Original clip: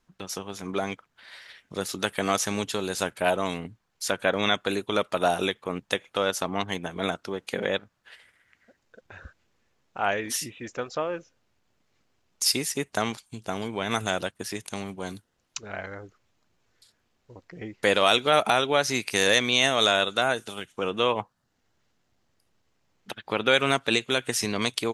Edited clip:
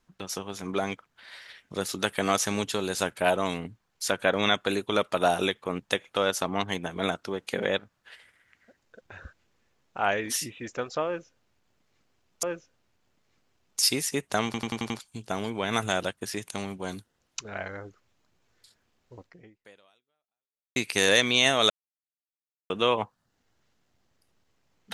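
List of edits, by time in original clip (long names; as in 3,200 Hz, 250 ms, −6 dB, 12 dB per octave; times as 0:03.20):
0:11.06–0:12.43: repeat, 2 plays
0:13.08: stutter 0.09 s, 6 plays
0:17.40–0:18.94: fade out exponential
0:19.88–0:20.88: silence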